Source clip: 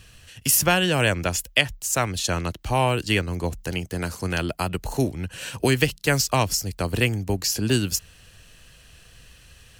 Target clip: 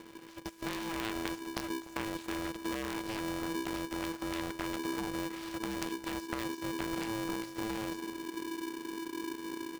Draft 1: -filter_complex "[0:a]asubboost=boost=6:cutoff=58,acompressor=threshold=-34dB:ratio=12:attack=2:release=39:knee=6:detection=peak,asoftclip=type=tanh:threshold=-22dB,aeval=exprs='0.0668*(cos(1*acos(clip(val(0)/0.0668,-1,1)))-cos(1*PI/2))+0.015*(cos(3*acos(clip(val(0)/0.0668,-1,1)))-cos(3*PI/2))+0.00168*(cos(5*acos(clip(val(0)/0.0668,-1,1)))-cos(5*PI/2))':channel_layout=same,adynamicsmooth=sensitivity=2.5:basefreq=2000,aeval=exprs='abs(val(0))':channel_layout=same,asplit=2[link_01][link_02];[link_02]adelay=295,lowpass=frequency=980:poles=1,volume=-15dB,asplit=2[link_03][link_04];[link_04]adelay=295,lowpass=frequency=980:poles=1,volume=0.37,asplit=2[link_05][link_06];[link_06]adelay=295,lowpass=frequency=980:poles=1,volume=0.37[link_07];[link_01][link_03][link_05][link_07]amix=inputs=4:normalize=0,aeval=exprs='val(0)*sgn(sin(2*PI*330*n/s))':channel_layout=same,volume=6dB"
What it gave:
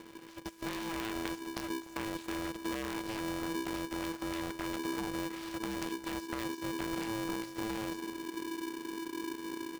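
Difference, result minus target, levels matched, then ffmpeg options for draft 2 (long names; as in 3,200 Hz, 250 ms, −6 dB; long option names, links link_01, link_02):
soft clipping: distortion +19 dB
-filter_complex "[0:a]asubboost=boost=6:cutoff=58,acompressor=threshold=-34dB:ratio=12:attack=2:release=39:knee=6:detection=peak,asoftclip=type=tanh:threshold=-12dB,aeval=exprs='0.0668*(cos(1*acos(clip(val(0)/0.0668,-1,1)))-cos(1*PI/2))+0.015*(cos(3*acos(clip(val(0)/0.0668,-1,1)))-cos(3*PI/2))+0.00168*(cos(5*acos(clip(val(0)/0.0668,-1,1)))-cos(5*PI/2))':channel_layout=same,adynamicsmooth=sensitivity=2.5:basefreq=2000,aeval=exprs='abs(val(0))':channel_layout=same,asplit=2[link_01][link_02];[link_02]adelay=295,lowpass=frequency=980:poles=1,volume=-15dB,asplit=2[link_03][link_04];[link_04]adelay=295,lowpass=frequency=980:poles=1,volume=0.37,asplit=2[link_05][link_06];[link_06]adelay=295,lowpass=frequency=980:poles=1,volume=0.37[link_07];[link_01][link_03][link_05][link_07]amix=inputs=4:normalize=0,aeval=exprs='val(0)*sgn(sin(2*PI*330*n/s))':channel_layout=same,volume=6dB"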